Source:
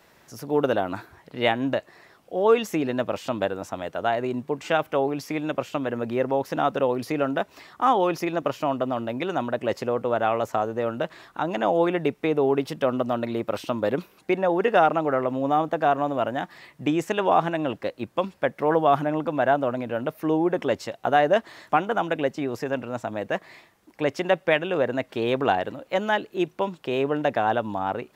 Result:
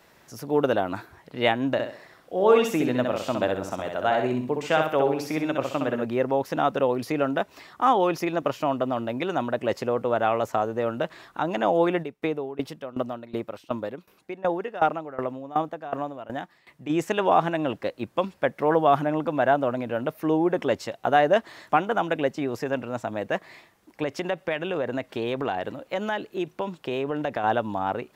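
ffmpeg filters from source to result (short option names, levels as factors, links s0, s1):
-filter_complex "[0:a]asplit=3[s0][s1][s2];[s0]afade=t=out:st=1.78:d=0.02[s3];[s1]aecho=1:1:64|128|192|256:0.596|0.208|0.073|0.0255,afade=t=in:st=1.78:d=0.02,afade=t=out:st=6.04:d=0.02[s4];[s2]afade=t=in:st=6.04:d=0.02[s5];[s3][s4][s5]amix=inputs=3:normalize=0,asplit=3[s6][s7][s8];[s6]afade=t=out:st=12.02:d=0.02[s9];[s7]aeval=exprs='val(0)*pow(10,-19*if(lt(mod(2.7*n/s,1),2*abs(2.7)/1000),1-mod(2.7*n/s,1)/(2*abs(2.7)/1000),(mod(2.7*n/s,1)-2*abs(2.7)/1000)/(1-2*abs(2.7)/1000))/20)':c=same,afade=t=in:st=12.02:d=0.02,afade=t=out:st=16.89:d=0.02[s10];[s8]afade=t=in:st=16.89:d=0.02[s11];[s9][s10][s11]amix=inputs=3:normalize=0,asettb=1/sr,asplit=3[s12][s13][s14];[s12]atrim=end=24.034[s15];[s13]atrim=start=24.03:end=27.44,asetpts=PTS-STARTPTS,afade=t=in:d=0.004:c=qsin,afade=t=out:st=3.406:d=0.004:c=qsin,acompressor=threshold=0.0631:ratio=3:attack=3.2:release=140:knee=1:detection=peak[s16];[s14]atrim=start=27.436[s17];[s15][s16]acrossfade=d=0.004:c1=hsin:c2=qsin[s18];[s18][s17]acrossfade=d=0.004:c1=qsin:c2=hsin"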